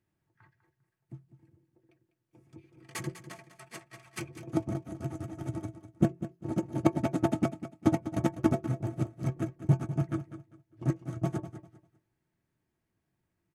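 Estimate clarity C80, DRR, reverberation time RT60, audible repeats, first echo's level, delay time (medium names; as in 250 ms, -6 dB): no reverb, no reverb, no reverb, 2, -12.5 dB, 199 ms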